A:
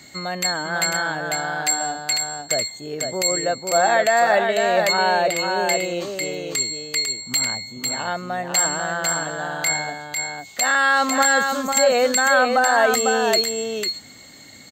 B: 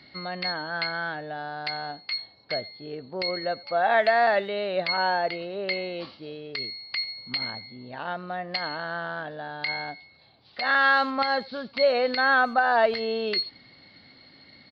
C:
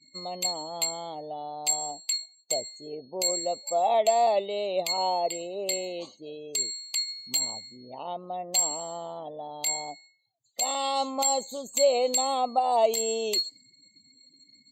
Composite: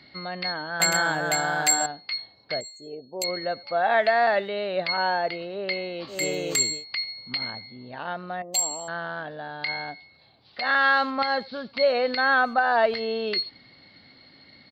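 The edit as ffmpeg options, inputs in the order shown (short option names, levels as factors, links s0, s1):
-filter_complex "[0:a]asplit=2[s0][s1];[2:a]asplit=2[s2][s3];[1:a]asplit=5[s4][s5][s6][s7][s8];[s4]atrim=end=0.802[s9];[s0]atrim=start=0.798:end=1.862[s10];[s5]atrim=start=1.858:end=2.612[s11];[s2]atrim=start=2.608:end=3.242[s12];[s6]atrim=start=3.238:end=6.23[s13];[s1]atrim=start=6.07:end=6.85[s14];[s7]atrim=start=6.69:end=8.422[s15];[s3]atrim=start=8.418:end=8.882[s16];[s8]atrim=start=8.878[s17];[s9][s10]acrossfade=d=0.004:c1=hsin:c2=hsin[s18];[s18][s11]acrossfade=d=0.004:c1=hsin:c2=hsin[s19];[s19][s12]acrossfade=d=0.004:c1=hsin:c2=hsin[s20];[s20][s13]acrossfade=d=0.004:c1=hsin:c2=hsin[s21];[s21][s14]acrossfade=d=0.16:c1=tri:c2=tri[s22];[s22][s15]acrossfade=d=0.16:c1=tri:c2=tri[s23];[s23][s16]acrossfade=d=0.004:c1=hsin:c2=hsin[s24];[s24][s17]acrossfade=d=0.004:c1=hsin:c2=hsin"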